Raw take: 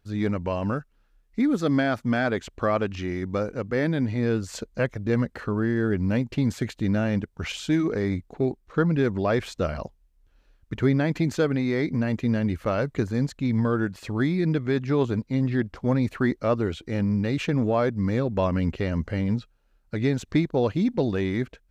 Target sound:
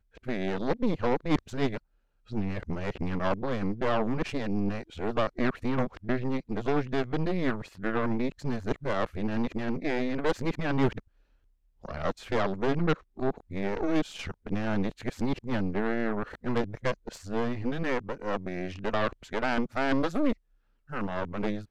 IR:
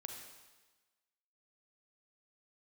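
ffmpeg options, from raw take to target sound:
-af "areverse,highshelf=f=4100:g=-5.5,aeval=exprs='0.316*(cos(1*acos(clip(val(0)/0.316,-1,1)))-cos(1*PI/2))+0.0794*(cos(6*acos(clip(val(0)/0.316,-1,1)))-cos(6*PI/2))':c=same,volume=0.531"

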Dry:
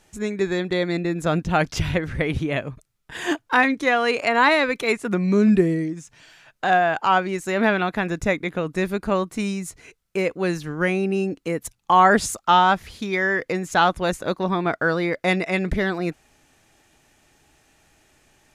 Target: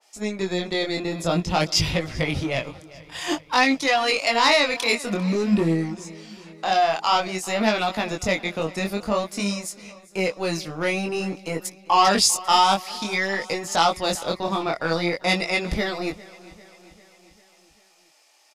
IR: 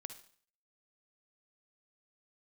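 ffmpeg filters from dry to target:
-filter_complex "[0:a]aeval=exprs='0.708*(cos(1*acos(clip(val(0)/0.708,-1,1)))-cos(1*PI/2))+0.0891*(cos(5*acos(clip(val(0)/0.708,-1,1)))-cos(5*PI/2))':c=same,equalizer=f=400:t=o:w=0.33:g=-5,equalizer=f=1600:t=o:w=0.33:g=-11,equalizer=f=5000:t=o:w=0.33:g=10,acrossover=split=450|1800[s0][s1][s2];[s0]aeval=exprs='sgn(val(0))*max(abs(val(0))-0.0282,0)':c=same[s3];[s3][s1][s2]amix=inputs=3:normalize=0,flanger=delay=18:depth=7.5:speed=0.51,aecho=1:1:397|794|1191|1588|1985:0.1|0.059|0.0348|0.0205|0.0121,adynamicequalizer=threshold=0.0282:dfrequency=2400:dqfactor=0.7:tfrequency=2400:tqfactor=0.7:attack=5:release=100:ratio=0.375:range=3:mode=boostabove:tftype=highshelf"

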